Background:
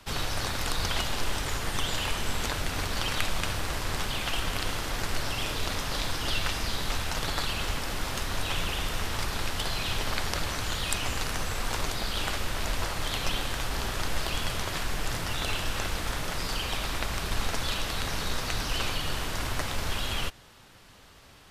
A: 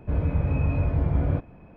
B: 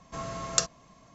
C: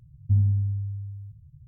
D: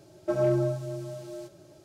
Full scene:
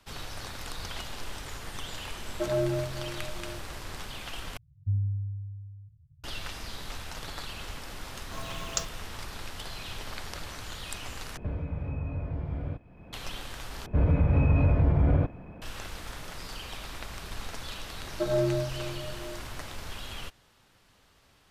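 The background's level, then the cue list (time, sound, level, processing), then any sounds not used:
background −9 dB
0:02.12: mix in D −3.5 dB
0:04.57: overwrite with C −14.5 dB + parametric band 89 Hz +8 dB 1.1 octaves
0:08.19: mix in B −6 dB + noise that follows the level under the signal 20 dB
0:11.37: overwrite with A −10.5 dB + multiband upward and downward compressor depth 100%
0:13.86: overwrite with A −13.5 dB + boost into a limiter +17 dB
0:17.92: mix in D −2 dB

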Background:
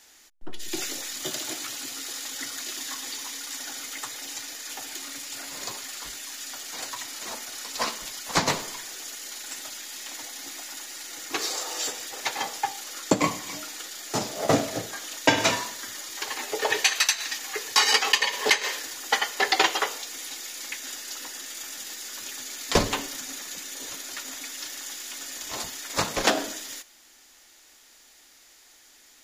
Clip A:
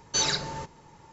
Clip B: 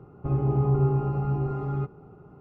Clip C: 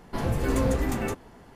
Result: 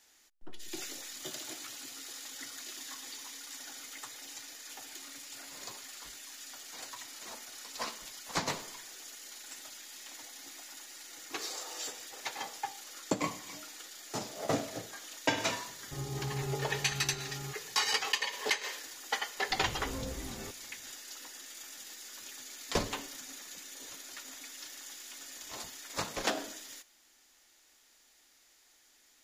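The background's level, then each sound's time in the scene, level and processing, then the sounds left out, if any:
background −10 dB
0:15.67: mix in B −9 dB + low-shelf EQ 460 Hz −6.5 dB
0:19.37: mix in C −15.5 dB
not used: A

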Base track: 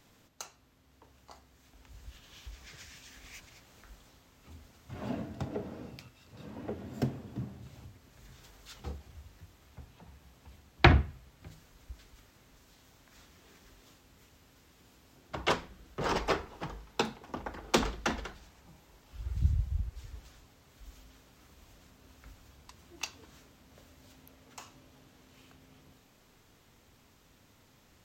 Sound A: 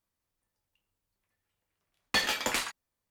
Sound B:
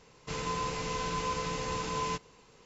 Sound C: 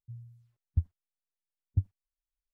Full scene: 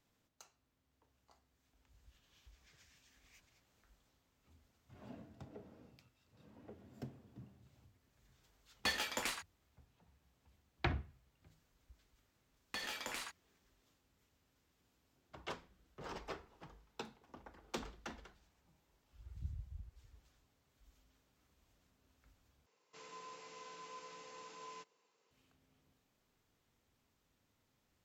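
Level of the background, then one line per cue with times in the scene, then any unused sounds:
base track −16.5 dB
0:06.71: mix in A −9 dB
0:10.60: mix in A −10.5 dB + downward compressor, threshold −28 dBFS
0:22.66: overwrite with B −18 dB + high-pass filter 340 Hz
not used: C

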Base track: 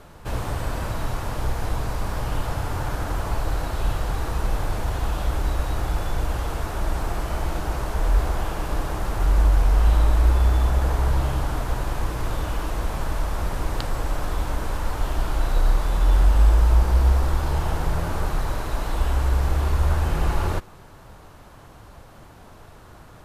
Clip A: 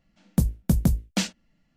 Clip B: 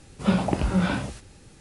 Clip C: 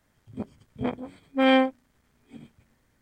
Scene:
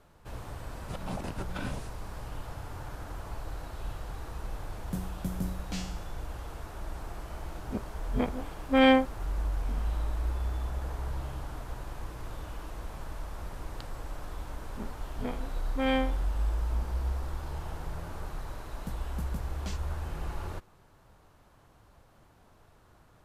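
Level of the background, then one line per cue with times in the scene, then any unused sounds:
base track −14 dB
0:00.69: mix in B −10.5 dB + compressor whose output falls as the input rises −27 dBFS, ratio −0.5
0:04.55: mix in A −0.5 dB + tuned comb filter 92 Hz, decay 0.74 s, mix 90%
0:07.35: mix in C −1 dB
0:14.40: mix in C −8.5 dB + peak hold with a decay on every bin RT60 0.39 s
0:18.49: mix in A −16 dB + brickwall limiter −14 dBFS

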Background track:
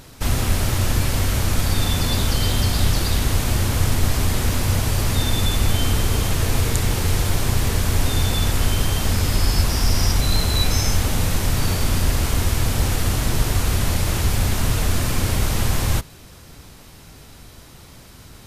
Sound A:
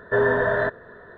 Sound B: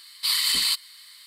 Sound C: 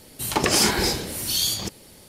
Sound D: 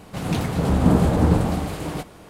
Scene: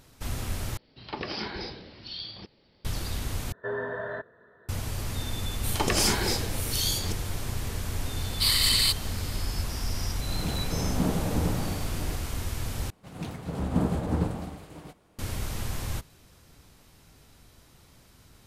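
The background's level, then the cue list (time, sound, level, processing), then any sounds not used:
background track −12.5 dB
0:00.77: overwrite with C −13 dB + downsampling to 11,025 Hz
0:03.52: overwrite with A −12.5 dB + high-pass filter 71 Hz
0:05.44: mix in C −5.5 dB
0:08.17: mix in B −0.5 dB
0:10.14: mix in D −10.5 dB
0:12.90: overwrite with D −8 dB + expander for the loud parts, over −31 dBFS

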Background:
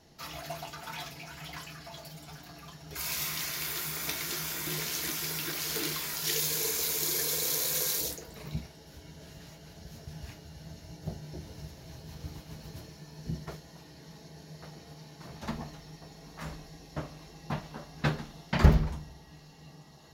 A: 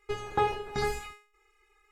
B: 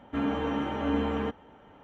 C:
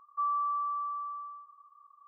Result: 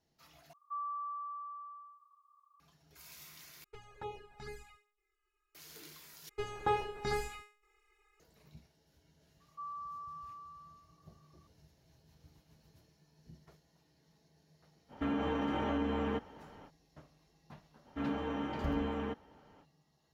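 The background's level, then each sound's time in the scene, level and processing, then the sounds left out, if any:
background −20 dB
0:00.53: overwrite with C −10.5 dB + tilt shelving filter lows −9 dB
0:03.64: overwrite with A −14.5 dB + flanger swept by the level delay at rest 3.2 ms, full sweep at −23 dBFS
0:06.29: overwrite with A −5 dB
0:09.40: mix in C −17 dB + parametric band 1,000 Hz +9 dB 0.34 octaves
0:14.88: mix in B −0.5 dB, fades 0.05 s + downward compressor, threshold −29 dBFS
0:17.83: mix in B −7.5 dB, fades 0.05 s

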